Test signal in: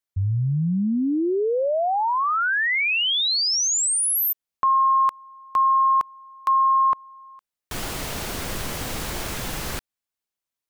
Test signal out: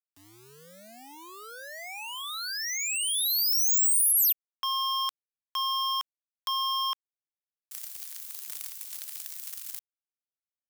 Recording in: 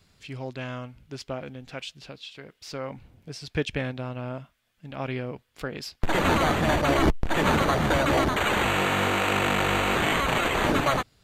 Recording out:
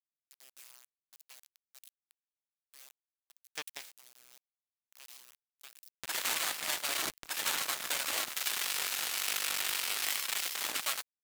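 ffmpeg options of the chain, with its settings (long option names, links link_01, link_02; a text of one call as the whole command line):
ffmpeg -i in.wav -af "aeval=exprs='val(0)*gte(abs(val(0)),0.0355)':channel_layout=same,aeval=exprs='0.316*(cos(1*acos(clip(val(0)/0.316,-1,1)))-cos(1*PI/2))+0.00224*(cos(3*acos(clip(val(0)/0.316,-1,1)))-cos(3*PI/2))+0.0631*(cos(7*acos(clip(val(0)/0.316,-1,1)))-cos(7*PI/2))':channel_layout=same,aderivative,volume=2dB" out.wav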